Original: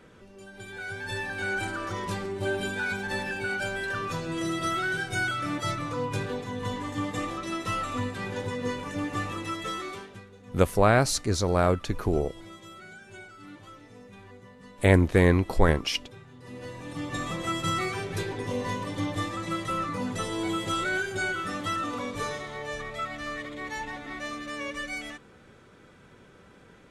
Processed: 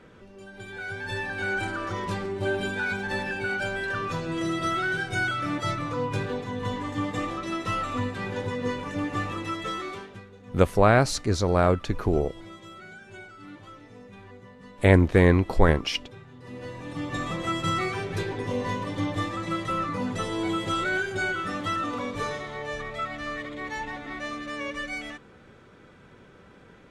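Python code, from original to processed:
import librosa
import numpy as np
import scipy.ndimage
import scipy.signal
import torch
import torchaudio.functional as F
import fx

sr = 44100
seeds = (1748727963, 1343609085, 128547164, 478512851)

y = fx.high_shelf(x, sr, hz=7400.0, db=-11.5)
y = y * librosa.db_to_amplitude(2.0)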